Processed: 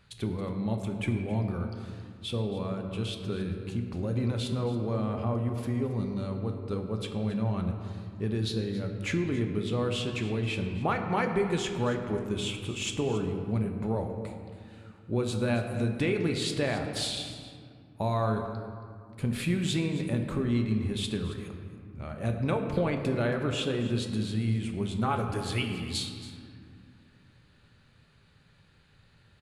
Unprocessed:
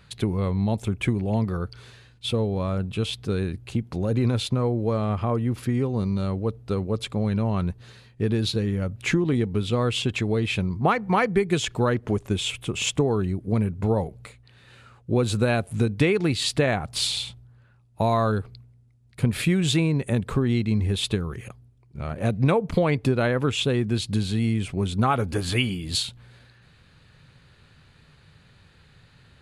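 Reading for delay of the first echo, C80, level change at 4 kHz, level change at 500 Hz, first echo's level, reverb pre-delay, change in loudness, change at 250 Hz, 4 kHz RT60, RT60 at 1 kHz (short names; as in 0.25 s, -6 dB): 0.274 s, 6.5 dB, -7.0 dB, -6.0 dB, -15.5 dB, 3 ms, -6.0 dB, -5.5 dB, 1.1 s, 2.2 s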